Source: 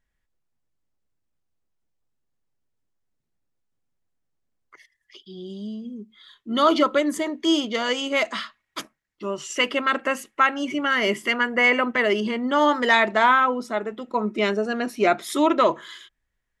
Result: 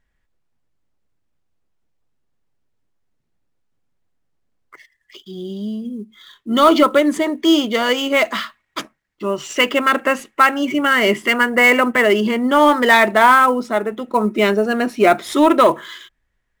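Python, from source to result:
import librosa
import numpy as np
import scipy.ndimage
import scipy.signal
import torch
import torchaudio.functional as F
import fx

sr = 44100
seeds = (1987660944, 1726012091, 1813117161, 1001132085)

p1 = fx.high_shelf(x, sr, hz=9700.0, db=-9.5)
p2 = fx.sample_hold(p1, sr, seeds[0], rate_hz=10000.0, jitter_pct=20)
p3 = p1 + (p2 * librosa.db_to_amplitude(-11.0))
p4 = 10.0 ** (-6.0 / 20.0) * np.tanh(p3 / 10.0 ** (-6.0 / 20.0))
y = p4 * librosa.db_to_amplitude(5.5)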